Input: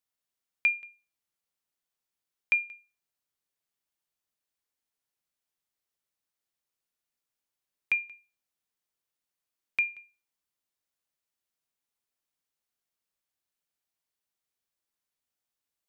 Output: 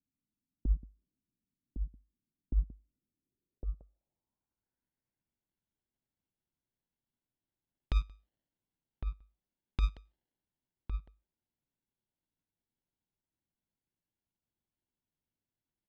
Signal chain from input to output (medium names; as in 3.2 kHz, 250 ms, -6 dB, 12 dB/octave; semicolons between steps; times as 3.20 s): local Wiener filter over 15 samples; level-controlled noise filter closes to 320 Hz, open at -34 dBFS; compressor with a negative ratio -31 dBFS, ratio -1; sample-and-hold 36×; band-stop 450 Hz, Q 12; echo from a far wall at 190 m, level -7 dB; low-pass sweep 260 Hz -> 3.7 kHz, 3.06–5.52 s; trim +4.5 dB